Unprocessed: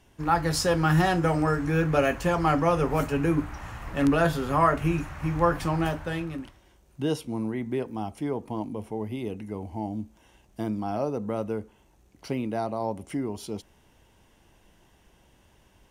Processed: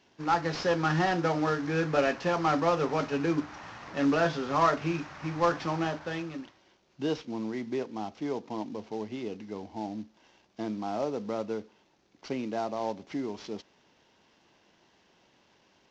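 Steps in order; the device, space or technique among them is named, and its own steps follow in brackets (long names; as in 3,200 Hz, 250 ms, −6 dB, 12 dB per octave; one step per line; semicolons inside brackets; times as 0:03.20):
early wireless headset (high-pass filter 200 Hz 12 dB per octave; variable-slope delta modulation 32 kbit/s)
level −2 dB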